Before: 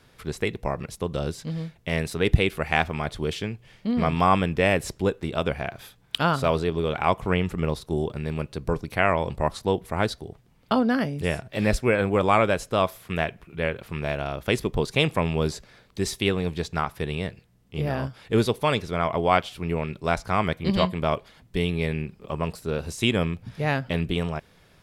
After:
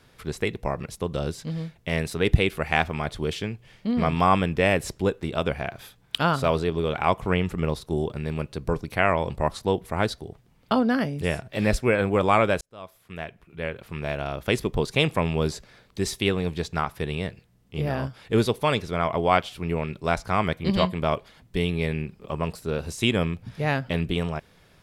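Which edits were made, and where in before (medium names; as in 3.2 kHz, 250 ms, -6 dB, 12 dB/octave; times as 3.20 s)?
12.61–14.35 s: fade in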